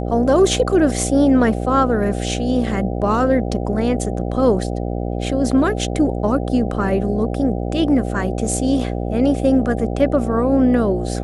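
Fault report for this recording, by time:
buzz 60 Hz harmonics 13 -23 dBFS

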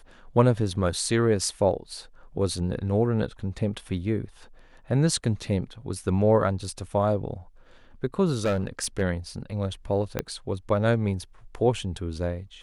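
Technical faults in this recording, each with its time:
8.34–9.02 s: clipped -20 dBFS
10.19 s: pop -11 dBFS

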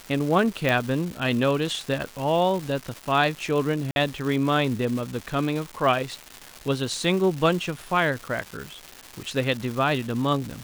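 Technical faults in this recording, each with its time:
crackle 470 per s -30 dBFS
0.69 s: pop
3.91–3.96 s: dropout 51 ms

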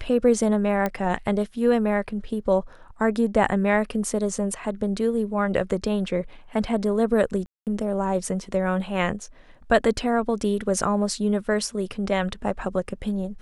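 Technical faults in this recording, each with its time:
0.86 s: pop -12 dBFS
7.46–7.67 s: dropout 208 ms

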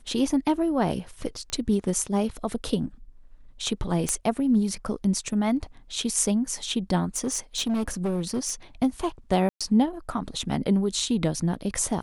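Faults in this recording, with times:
1.50 s: pop -19 dBFS
4.09 s: pop -11 dBFS
7.16–8.52 s: clipped -22 dBFS
9.49–9.61 s: dropout 116 ms

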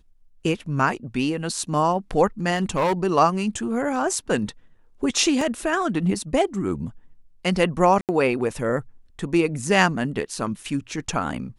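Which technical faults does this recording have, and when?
2.55–2.93 s: clipped -17 dBFS
5.41 s: dropout 3 ms
8.01–8.09 s: dropout 78 ms

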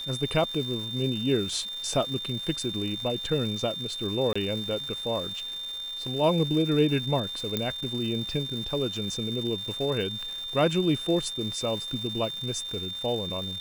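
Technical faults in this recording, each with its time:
crackle 580 per s -36 dBFS
whine 3.6 kHz -33 dBFS
4.33–4.36 s: dropout 25 ms
7.57 s: pop -12 dBFS

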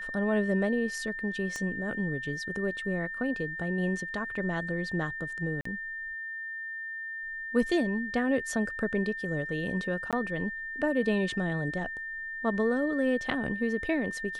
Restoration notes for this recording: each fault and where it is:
whine 1.8 kHz -35 dBFS
1.56 s: pop -23 dBFS
5.61–5.65 s: dropout 44 ms
10.11–10.13 s: dropout 17 ms

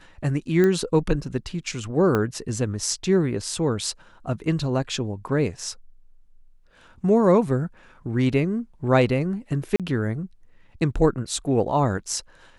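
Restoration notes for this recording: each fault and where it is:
0.64 s: pop -11 dBFS
2.15 s: pop -11 dBFS
9.76–9.80 s: dropout 37 ms

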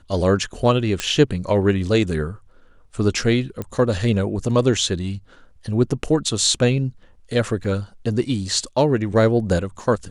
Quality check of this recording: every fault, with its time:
1.00 s: pop -7 dBFS
3.62 s: pop -15 dBFS
7.64 s: dropout 4.2 ms

